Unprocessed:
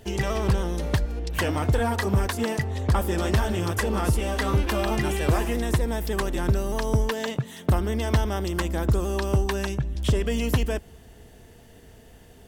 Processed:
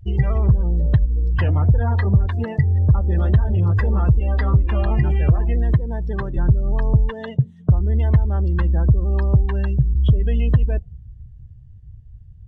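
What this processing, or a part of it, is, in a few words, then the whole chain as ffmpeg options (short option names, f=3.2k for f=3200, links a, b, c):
jukebox: -filter_complex "[0:a]lowpass=6.5k,lowshelf=f=180:t=q:w=1.5:g=11,acompressor=threshold=-11dB:ratio=4,asettb=1/sr,asplit=3[a][b][c];[a]atrim=end=5.744[d];[b]atrim=start=5.74:end=6.37,asetpts=PTS-STARTPTS,afade=t=in:d=0.004:c=qsin,afade=t=out:st=0.626:d=0.004:c=qsin,highpass=75[e];[c]atrim=start=6.366[f];[d][e]acrossfade=d=0.004:c1=hsin:c2=qsin[g];[g][f]acrossfade=d=0.004:c1=qsin:c2=hsin,afftdn=nr=27:nf=-29"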